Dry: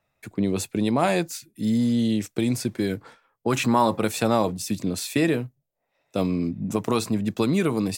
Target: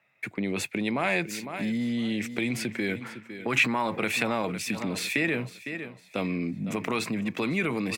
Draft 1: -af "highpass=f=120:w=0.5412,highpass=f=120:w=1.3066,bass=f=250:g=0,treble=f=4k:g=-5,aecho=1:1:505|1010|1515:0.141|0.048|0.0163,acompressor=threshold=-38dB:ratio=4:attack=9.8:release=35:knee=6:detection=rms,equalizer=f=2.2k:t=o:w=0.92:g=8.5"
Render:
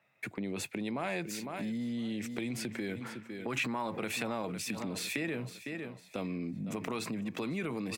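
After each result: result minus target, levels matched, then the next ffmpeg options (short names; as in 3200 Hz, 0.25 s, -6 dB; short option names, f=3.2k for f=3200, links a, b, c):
compressor: peak gain reduction +7 dB; 2000 Hz band -2.5 dB
-af "highpass=f=120:w=0.5412,highpass=f=120:w=1.3066,bass=f=250:g=0,treble=f=4k:g=-5,aecho=1:1:505|1010|1515:0.141|0.048|0.0163,acompressor=threshold=-28.5dB:ratio=4:attack=9.8:release=35:knee=6:detection=rms,equalizer=f=2.2k:t=o:w=0.92:g=8.5"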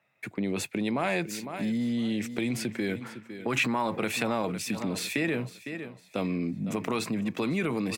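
2000 Hz band -3.0 dB
-af "highpass=f=120:w=0.5412,highpass=f=120:w=1.3066,bass=f=250:g=0,treble=f=4k:g=-5,aecho=1:1:505|1010|1515:0.141|0.048|0.0163,acompressor=threshold=-28.5dB:ratio=4:attack=9.8:release=35:knee=6:detection=rms,equalizer=f=2.2k:t=o:w=0.92:g=14.5"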